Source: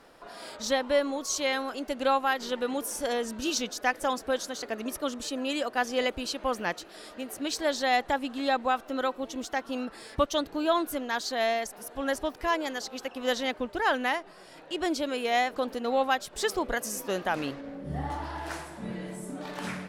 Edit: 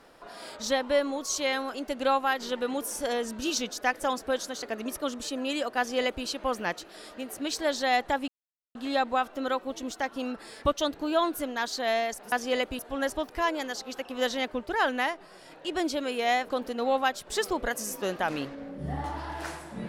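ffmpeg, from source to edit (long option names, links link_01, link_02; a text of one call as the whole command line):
ffmpeg -i in.wav -filter_complex "[0:a]asplit=4[link_01][link_02][link_03][link_04];[link_01]atrim=end=8.28,asetpts=PTS-STARTPTS,afade=type=out:start_time=8.276:duration=0.004:curve=hsin,apad=pad_dur=0.47[link_05];[link_02]atrim=start=8.28:end=11.852,asetpts=PTS-STARTPTS,afade=type=in:duration=0.004:curve=hsin[link_06];[link_03]atrim=start=5.778:end=6.252[link_07];[link_04]atrim=start=11.848[link_08];[link_05][link_06]concat=n=2:v=0:a=1[link_09];[link_09][link_07]acrossfade=duration=0.004:curve1=hsin:curve2=hsin[link_10];[link_10][link_08]acrossfade=duration=0.004:curve1=hsin:curve2=hsin" out.wav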